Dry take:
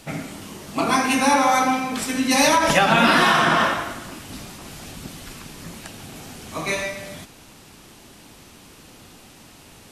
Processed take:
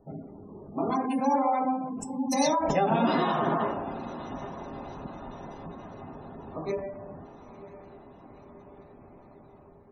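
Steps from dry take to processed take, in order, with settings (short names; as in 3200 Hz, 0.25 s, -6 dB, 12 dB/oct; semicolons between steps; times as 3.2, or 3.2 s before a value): Wiener smoothing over 15 samples; 1.89–2.33 EQ curve 190 Hz 0 dB, 3300 Hz -23 dB, 5400 Hz +2 dB; diffused feedback echo 0.962 s, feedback 64%, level -15 dB; spectral gate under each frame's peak -20 dB strong; band shelf 2000 Hz -12.5 dB; resonator 410 Hz, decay 0.18 s, harmonics odd, mix 80%; AGC gain up to 4 dB; gain +3.5 dB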